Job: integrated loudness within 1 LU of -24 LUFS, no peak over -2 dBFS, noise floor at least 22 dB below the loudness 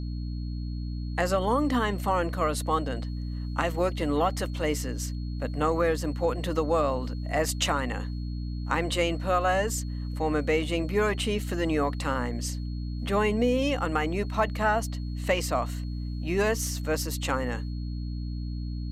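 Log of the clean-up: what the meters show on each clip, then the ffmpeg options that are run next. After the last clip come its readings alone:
hum 60 Hz; harmonics up to 300 Hz; hum level -30 dBFS; steady tone 4300 Hz; tone level -53 dBFS; loudness -28.5 LUFS; peak -10.5 dBFS; loudness target -24.0 LUFS
-> -af "bandreject=f=60:t=h:w=4,bandreject=f=120:t=h:w=4,bandreject=f=180:t=h:w=4,bandreject=f=240:t=h:w=4,bandreject=f=300:t=h:w=4"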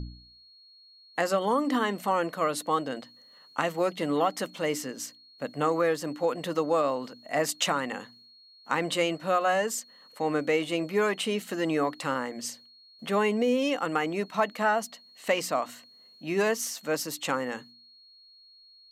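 hum none; steady tone 4300 Hz; tone level -53 dBFS
-> -af "bandreject=f=4.3k:w=30"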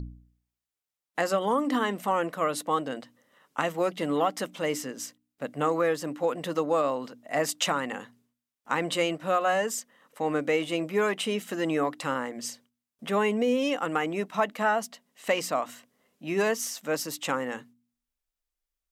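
steady tone none; loudness -28.5 LUFS; peak -11.0 dBFS; loudness target -24.0 LUFS
-> -af "volume=4.5dB"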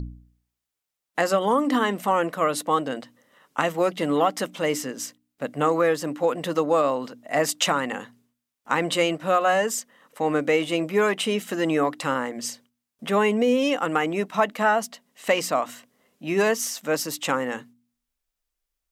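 loudness -24.0 LUFS; peak -6.5 dBFS; noise floor -84 dBFS

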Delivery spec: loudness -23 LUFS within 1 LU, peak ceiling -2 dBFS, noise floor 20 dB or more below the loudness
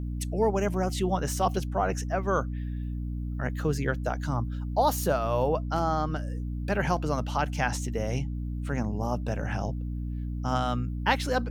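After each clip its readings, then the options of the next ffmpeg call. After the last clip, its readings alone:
hum 60 Hz; harmonics up to 300 Hz; hum level -30 dBFS; loudness -29.0 LUFS; peak -9.5 dBFS; loudness target -23.0 LUFS
-> -af "bandreject=f=60:t=h:w=6,bandreject=f=120:t=h:w=6,bandreject=f=180:t=h:w=6,bandreject=f=240:t=h:w=6,bandreject=f=300:t=h:w=6"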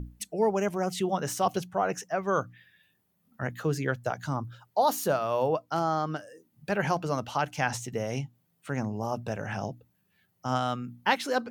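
hum none; loudness -30.0 LUFS; peak -9.5 dBFS; loudness target -23.0 LUFS
-> -af "volume=7dB"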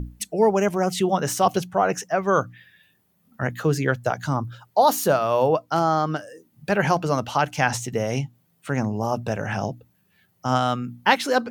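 loudness -23.0 LUFS; peak -2.5 dBFS; noise floor -66 dBFS

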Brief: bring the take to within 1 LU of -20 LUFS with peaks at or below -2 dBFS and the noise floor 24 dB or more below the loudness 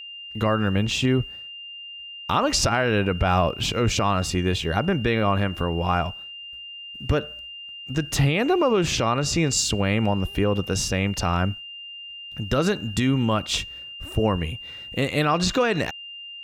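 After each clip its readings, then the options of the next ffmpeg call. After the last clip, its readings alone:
steady tone 2800 Hz; tone level -36 dBFS; loudness -23.0 LUFS; peak -10.0 dBFS; loudness target -20.0 LUFS
-> -af "bandreject=f=2.8k:w=30"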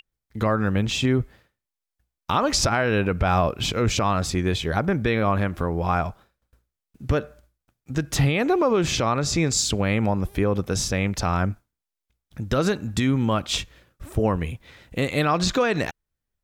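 steady tone none; loudness -23.5 LUFS; peak -10.5 dBFS; loudness target -20.0 LUFS
-> -af "volume=3.5dB"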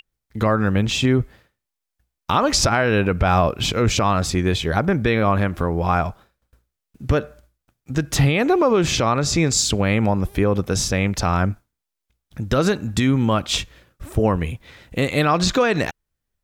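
loudness -20.0 LUFS; peak -7.0 dBFS; noise floor -83 dBFS

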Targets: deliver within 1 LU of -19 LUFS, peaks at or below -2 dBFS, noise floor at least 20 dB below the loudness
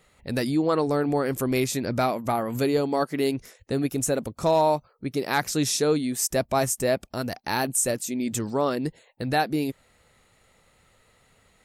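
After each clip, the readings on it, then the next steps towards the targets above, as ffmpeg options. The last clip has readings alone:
loudness -25.5 LUFS; peak -10.0 dBFS; loudness target -19.0 LUFS
-> -af "volume=6.5dB"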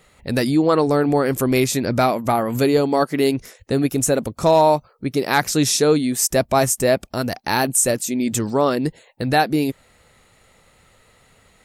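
loudness -19.0 LUFS; peak -3.5 dBFS; noise floor -56 dBFS

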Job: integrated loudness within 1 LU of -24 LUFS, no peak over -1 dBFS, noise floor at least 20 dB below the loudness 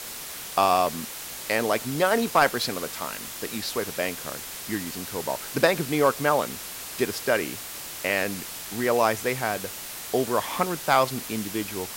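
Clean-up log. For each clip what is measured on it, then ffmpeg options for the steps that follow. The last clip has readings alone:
noise floor -37 dBFS; noise floor target -46 dBFS; loudness -26.0 LUFS; peak -8.0 dBFS; loudness target -24.0 LUFS
-> -af "afftdn=nr=9:nf=-37"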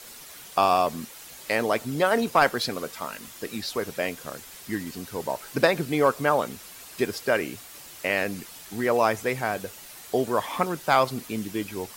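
noise floor -45 dBFS; noise floor target -46 dBFS
-> -af "afftdn=nr=6:nf=-45"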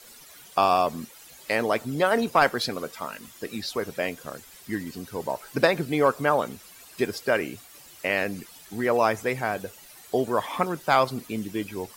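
noise floor -49 dBFS; loudness -26.0 LUFS; peak -8.0 dBFS; loudness target -24.0 LUFS
-> -af "volume=2dB"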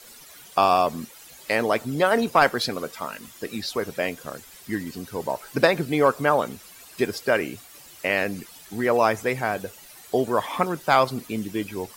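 loudness -24.0 LUFS; peak -6.0 dBFS; noise floor -47 dBFS

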